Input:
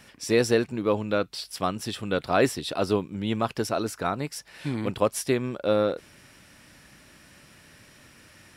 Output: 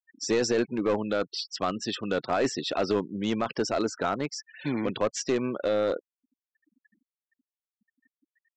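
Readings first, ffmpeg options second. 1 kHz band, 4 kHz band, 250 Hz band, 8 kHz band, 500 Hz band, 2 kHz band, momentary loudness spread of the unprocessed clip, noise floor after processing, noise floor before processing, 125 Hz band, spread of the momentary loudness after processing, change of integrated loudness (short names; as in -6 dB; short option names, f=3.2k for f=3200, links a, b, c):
-2.0 dB, 0.0 dB, -1.0 dB, -1.0 dB, -2.0 dB, -2.5 dB, 9 LU, under -85 dBFS, -54 dBFS, -6.5 dB, 6 LU, -2.0 dB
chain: -af "highpass=200,afftfilt=real='re*gte(hypot(re,im),0.0112)':imag='im*gte(hypot(re,im),0.0112)':win_size=1024:overlap=0.75,adynamicequalizer=threshold=0.00224:dfrequency=3900:dqfactor=4.2:tfrequency=3900:tqfactor=4.2:attack=5:release=100:ratio=0.375:range=1.5:mode=cutabove:tftype=bell,alimiter=limit=-17.5dB:level=0:latency=1:release=23,aresample=16000,aeval=exprs='clip(val(0),-1,0.0631)':c=same,aresample=44100,volume=3dB"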